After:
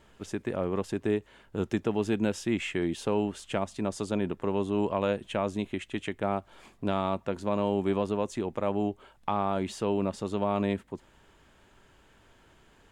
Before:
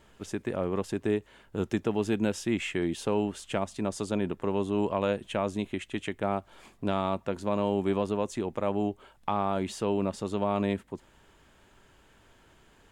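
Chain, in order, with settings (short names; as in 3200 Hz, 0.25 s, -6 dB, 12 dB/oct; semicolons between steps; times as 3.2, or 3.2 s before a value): high shelf 8300 Hz -4 dB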